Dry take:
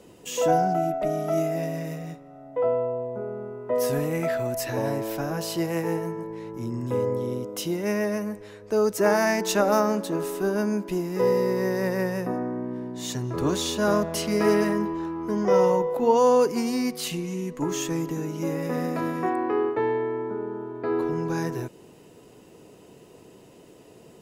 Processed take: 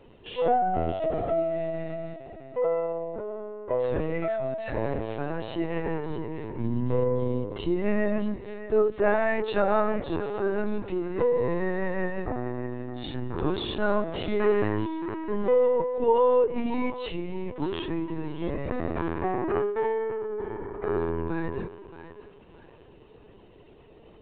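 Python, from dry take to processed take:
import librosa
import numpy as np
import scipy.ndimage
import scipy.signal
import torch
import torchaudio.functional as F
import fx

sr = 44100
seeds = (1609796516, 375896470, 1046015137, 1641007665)

y = fx.low_shelf(x, sr, hz=270.0, db=8.5, at=(6.1, 8.82))
y = fx.echo_thinned(y, sr, ms=624, feedback_pct=34, hz=430.0, wet_db=-12)
y = fx.lpc_vocoder(y, sr, seeds[0], excitation='pitch_kept', order=16)
y = y * librosa.db_to_amplitude(-2.0)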